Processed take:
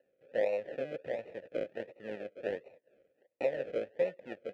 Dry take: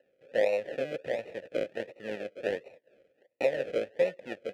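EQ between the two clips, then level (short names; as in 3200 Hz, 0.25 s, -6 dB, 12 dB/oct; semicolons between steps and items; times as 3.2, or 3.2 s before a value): high shelf 3600 Hz -11.5 dB; -4.0 dB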